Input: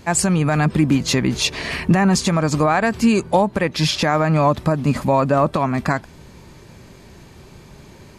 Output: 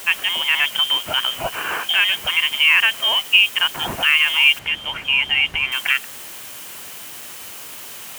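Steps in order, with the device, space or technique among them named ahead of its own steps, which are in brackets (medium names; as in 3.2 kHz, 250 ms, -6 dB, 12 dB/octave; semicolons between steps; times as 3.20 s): scrambled radio voice (band-pass 360–2900 Hz; frequency inversion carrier 3.4 kHz; white noise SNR 16 dB); 4.59–5.72 s: RIAA curve playback; high-pass 110 Hz 6 dB/octave; peaking EQ 4.7 kHz -3.5 dB 0.77 oct; trim +4 dB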